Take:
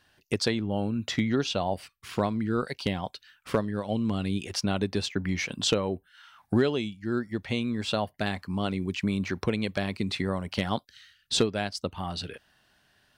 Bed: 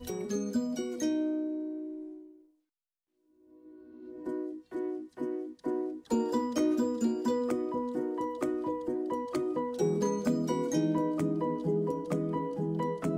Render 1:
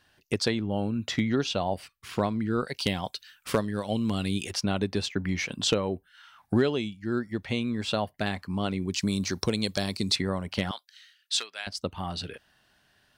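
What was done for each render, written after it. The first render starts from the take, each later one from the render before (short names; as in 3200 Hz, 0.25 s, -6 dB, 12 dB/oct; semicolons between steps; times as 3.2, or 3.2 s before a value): 2.74–4.51 high shelf 3600 Hz +11 dB; 8.94–10.16 resonant high shelf 3500 Hz +11 dB, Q 1.5; 10.71–11.67 HPF 1500 Hz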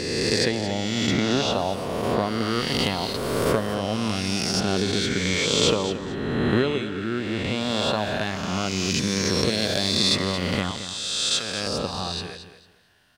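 spectral swells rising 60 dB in 2.15 s; feedback echo 0.224 s, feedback 23%, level -11.5 dB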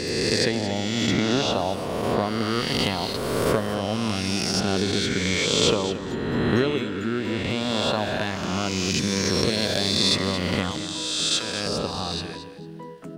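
add bed -7 dB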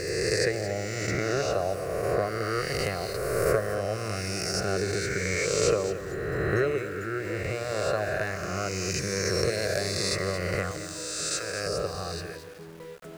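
fixed phaser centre 910 Hz, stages 6; sample gate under -45.5 dBFS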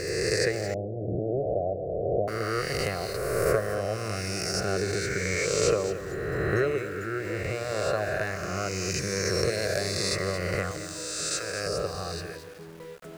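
0.74–2.28 steep low-pass 750 Hz 72 dB/oct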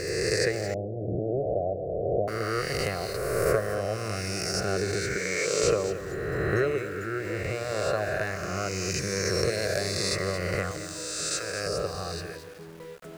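5.16–5.64 HPF 200 Hz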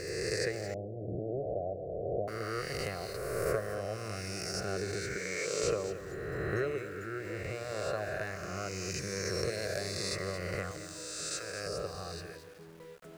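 gain -7.5 dB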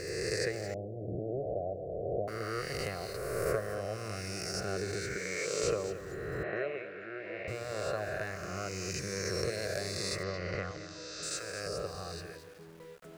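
6.43–7.48 speaker cabinet 250–3500 Hz, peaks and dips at 280 Hz -7 dB, 420 Hz -5 dB, 640 Hz +9 dB, 1300 Hz -7 dB, 2400 Hz +5 dB; 10.23–11.23 steep low-pass 6000 Hz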